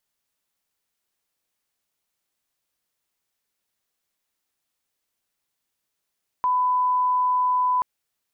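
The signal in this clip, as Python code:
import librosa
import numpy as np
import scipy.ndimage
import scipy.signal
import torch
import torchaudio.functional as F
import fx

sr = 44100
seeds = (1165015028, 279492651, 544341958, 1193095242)

y = fx.lineup_tone(sr, length_s=1.38, level_db=-18.0)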